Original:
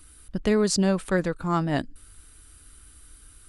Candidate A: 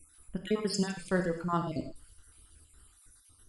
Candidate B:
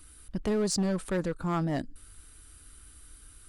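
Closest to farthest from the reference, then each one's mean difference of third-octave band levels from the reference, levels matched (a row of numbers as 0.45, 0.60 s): B, A; 2.5, 4.0 dB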